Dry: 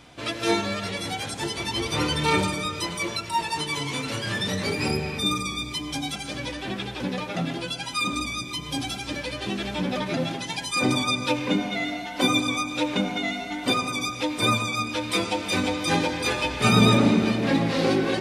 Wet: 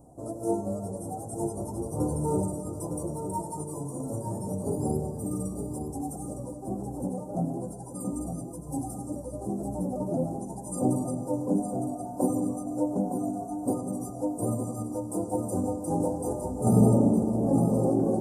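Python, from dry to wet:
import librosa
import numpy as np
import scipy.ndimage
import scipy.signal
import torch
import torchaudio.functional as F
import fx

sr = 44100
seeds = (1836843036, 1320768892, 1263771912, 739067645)

y = scipy.signal.sosfilt(scipy.signal.ellip(3, 1.0, 60, [750.0, 8500.0], 'bandstop', fs=sr, output='sos'), x)
y = fx.tremolo_shape(y, sr, shape='saw_down', hz=1.5, depth_pct=35)
y = y + 10.0 ** (-7.5 / 20.0) * np.pad(y, (int(910 * sr / 1000.0), 0))[:len(y)]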